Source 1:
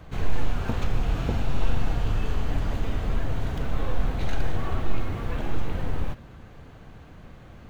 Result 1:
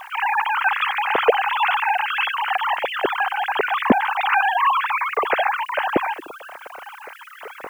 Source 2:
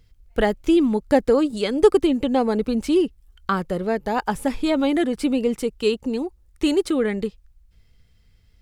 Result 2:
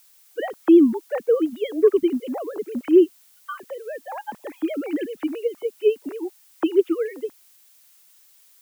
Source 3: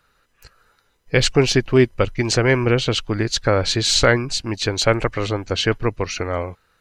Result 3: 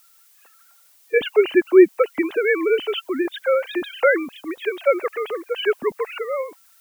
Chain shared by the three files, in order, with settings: sine-wave speech; added noise blue -54 dBFS; gain -1 dB

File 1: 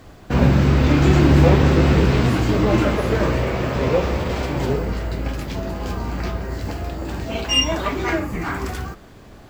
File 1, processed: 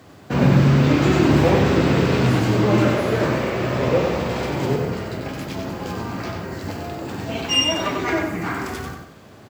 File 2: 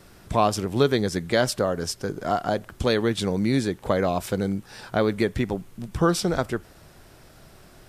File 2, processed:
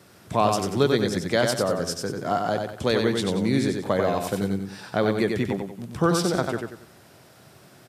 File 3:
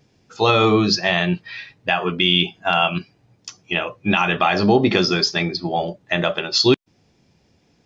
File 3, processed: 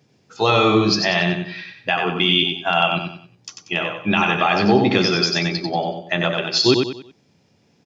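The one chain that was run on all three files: HPF 96 Hz 24 dB/oct; feedback echo 93 ms, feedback 35%, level -4.5 dB; gain -1 dB

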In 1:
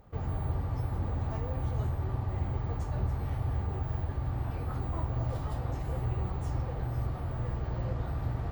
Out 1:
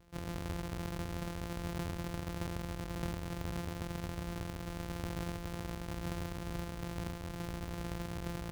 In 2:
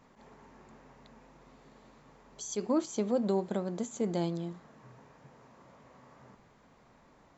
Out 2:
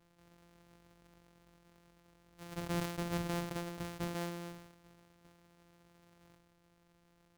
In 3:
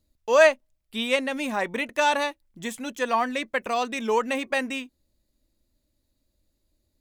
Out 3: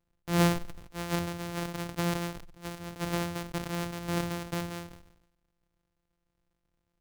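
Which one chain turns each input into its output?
sample sorter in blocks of 256 samples; sustainer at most 67 dB/s; gain -8.5 dB

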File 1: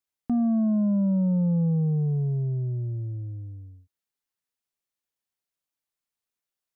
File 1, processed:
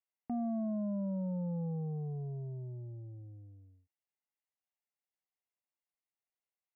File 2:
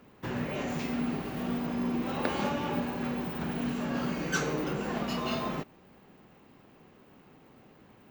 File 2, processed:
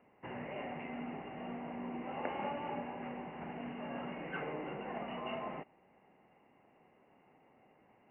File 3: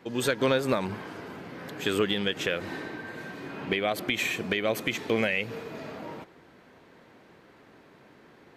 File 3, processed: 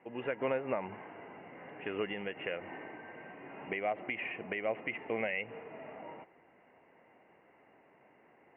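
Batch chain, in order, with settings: rippled Chebyshev low-pass 2900 Hz, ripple 9 dB; low shelf 110 Hz -7 dB; gain -3 dB

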